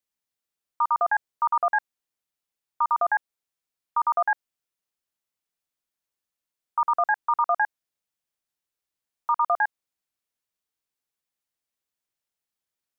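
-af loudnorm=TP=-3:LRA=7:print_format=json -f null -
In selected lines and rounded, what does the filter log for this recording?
"input_i" : "-25.3",
"input_tp" : "-14.4",
"input_lra" : "4.2",
"input_thresh" : "-35.4",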